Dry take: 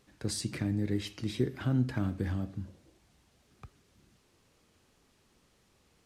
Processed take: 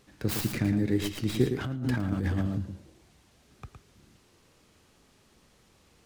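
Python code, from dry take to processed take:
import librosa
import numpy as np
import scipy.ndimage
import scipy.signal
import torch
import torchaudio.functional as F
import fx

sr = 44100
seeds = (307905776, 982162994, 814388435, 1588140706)

y = fx.tracing_dist(x, sr, depth_ms=0.25)
y = y + 10.0 ** (-7.0 / 20.0) * np.pad(y, (int(113 * sr / 1000.0), 0))[:len(y)]
y = fx.over_compress(y, sr, threshold_db=-34.0, ratio=-1.0, at=(1.64, 2.58))
y = F.gain(torch.from_numpy(y), 5.0).numpy()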